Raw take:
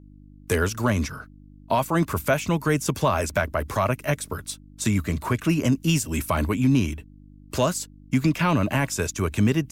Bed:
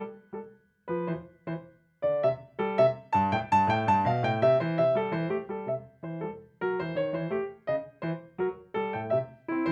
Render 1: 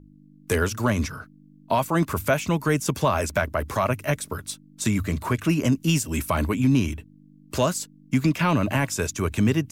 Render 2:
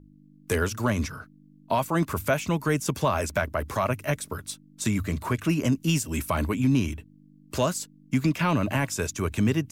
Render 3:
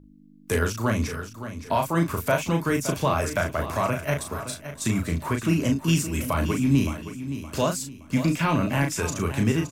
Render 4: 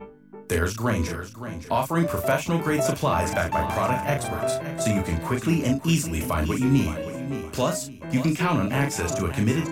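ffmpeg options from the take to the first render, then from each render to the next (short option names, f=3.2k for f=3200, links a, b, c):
-af "bandreject=f=50:t=h:w=4,bandreject=f=100:t=h:w=4"
-af "volume=-2.5dB"
-filter_complex "[0:a]asplit=2[a][b];[b]adelay=36,volume=-5dB[c];[a][c]amix=inputs=2:normalize=0,aecho=1:1:568|1136|1704:0.266|0.0878|0.029"
-filter_complex "[1:a]volume=-4dB[a];[0:a][a]amix=inputs=2:normalize=0"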